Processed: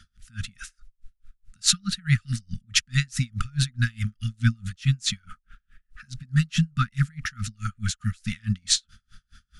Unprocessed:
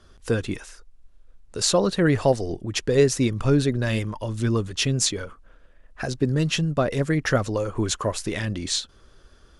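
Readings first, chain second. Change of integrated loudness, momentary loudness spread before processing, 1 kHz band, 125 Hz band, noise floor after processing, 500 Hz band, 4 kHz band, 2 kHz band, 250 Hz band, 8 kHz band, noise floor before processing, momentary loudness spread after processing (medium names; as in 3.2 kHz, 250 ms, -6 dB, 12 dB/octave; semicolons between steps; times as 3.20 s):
-2.5 dB, 11 LU, -7.0 dB, 0.0 dB, -73 dBFS, under -40 dB, +0.5 dB, -1.5 dB, -6.5 dB, -0.5 dB, -54 dBFS, 15 LU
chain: brick-wall FIR band-stop 240–1200 Hz; logarithmic tremolo 4.7 Hz, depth 36 dB; trim +7 dB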